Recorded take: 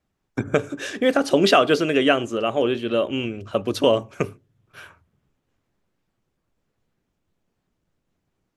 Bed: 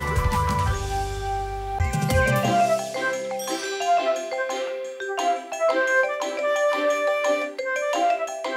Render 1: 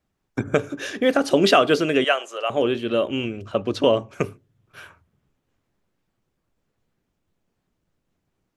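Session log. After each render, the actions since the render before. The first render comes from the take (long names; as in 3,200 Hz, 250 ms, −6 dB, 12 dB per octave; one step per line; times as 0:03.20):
0:00.60–0:01.14: notch filter 7,900 Hz, Q 5.4
0:02.04–0:02.50: high-pass filter 560 Hz 24 dB per octave
0:03.52–0:04.11: high-frequency loss of the air 68 metres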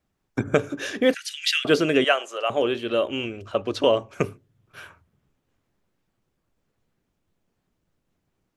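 0:01.14–0:01.65: Butterworth high-pass 1,800 Hz 48 dB per octave
0:02.53–0:04.16: parametric band 170 Hz −8 dB 1.5 octaves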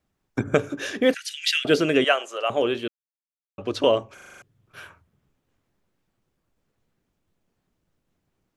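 0:01.22–0:01.79: parametric band 1,100 Hz −12.5 dB 0.27 octaves
0:02.88–0:03.58: silence
0:04.14: stutter in place 0.04 s, 7 plays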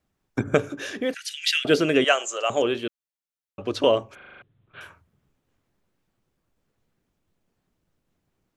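0:00.69–0:01.22: downward compressor 1.5 to 1, threshold −33 dBFS
0:02.08–0:02.63: low-pass with resonance 7,200 Hz, resonance Q 7.2
0:04.15–0:04.81: Butterworth low-pass 3,900 Hz 72 dB per octave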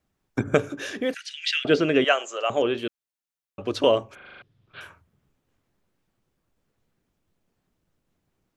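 0:01.21–0:02.78: high-frequency loss of the air 110 metres
0:04.25–0:04.81: parametric band 4,900 Hz +15 dB 0.71 octaves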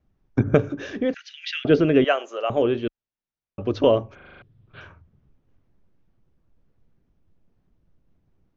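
elliptic low-pass filter 6,300 Hz, stop band 40 dB
spectral tilt −3 dB per octave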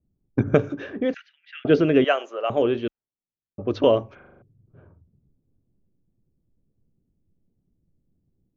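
low-pass that shuts in the quiet parts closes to 330 Hz, open at −18.5 dBFS
low-shelf EQ 67 Hz −9 dB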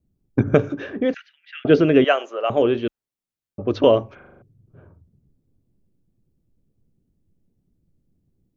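level +3 dB
brickwall limiter −1 dBFS, peak gain reduction 1 dB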